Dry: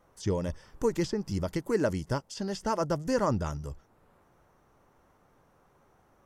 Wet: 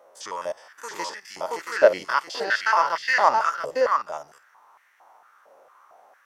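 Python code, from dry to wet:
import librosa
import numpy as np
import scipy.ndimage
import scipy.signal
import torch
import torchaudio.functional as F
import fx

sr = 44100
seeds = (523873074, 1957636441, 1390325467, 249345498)

p1 = fx.spec_steps(x, sr, hold_ms=50)
p2 = fx.graphic_eq(p1, sr, hz=(2000, 4000, 8000), db=(9, 9, -10), at=(1.76, 3.35))
p3 = p2 + fx.echo_single(p2, sr, ms=677, db=-6.0, dry=0)
p4 = fx.filter_held_highpass(p3, sr, hz=4.4, low_hz=570.0, high_hz=1900.0)
y = p4 * librosa.db_to_amplitude(6.5)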